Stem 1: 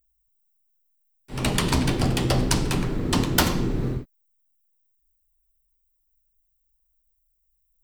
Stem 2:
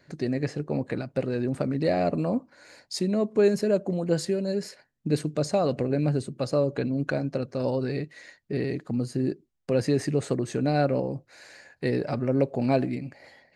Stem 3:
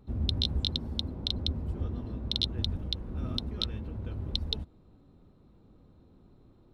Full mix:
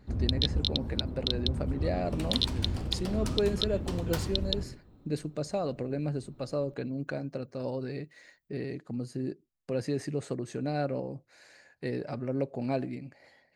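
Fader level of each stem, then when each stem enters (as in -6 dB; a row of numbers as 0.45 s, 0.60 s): -17.0 dB, -7.5 dB, +1.0 dB; 0.75 s, 0.00 s, 0.00 s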